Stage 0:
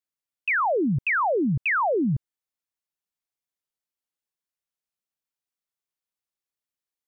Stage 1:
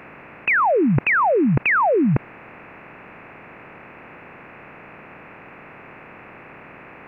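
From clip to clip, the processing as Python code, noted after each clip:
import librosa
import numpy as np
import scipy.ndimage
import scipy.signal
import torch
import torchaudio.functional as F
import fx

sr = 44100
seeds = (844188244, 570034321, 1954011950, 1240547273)

y = fx.bin_compress(x, sr, power=0.4)
y = y * librosa.db_to_amplitude(4.0)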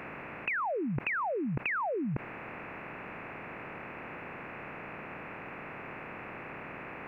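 y = fx.over_compress(x, sr, threshold_db=-24.0, ratio=-1.0)
y = y * librosa.db_to_amplitude(-7.5)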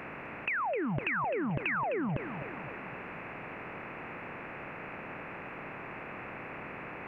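y = fx.echo_feedback(x, sr, ms=258, feedback_pct=56, wet_db=-10.5)
y = fx.doppler_dist(y, sr, depth_ms=0.19)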